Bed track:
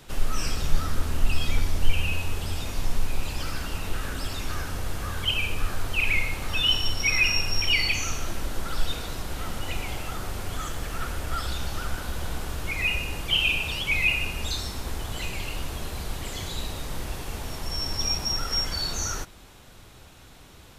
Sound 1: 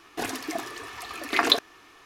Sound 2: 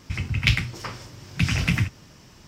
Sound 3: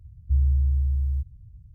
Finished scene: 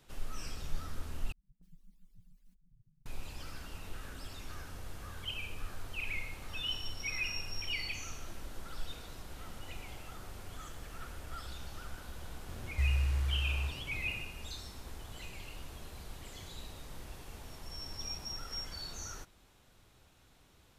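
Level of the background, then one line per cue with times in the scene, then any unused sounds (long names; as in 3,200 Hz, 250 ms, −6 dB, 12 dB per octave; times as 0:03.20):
bed track −14.5 dB
0:01.32: overwrite with 3 −6 dB + harmonic-percussive split with one part muted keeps percussive
0:12.48: mix in 3 −9.5 dB + linear delta modulator 64 kbit/s, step −31 dBFS
not used: 1, 2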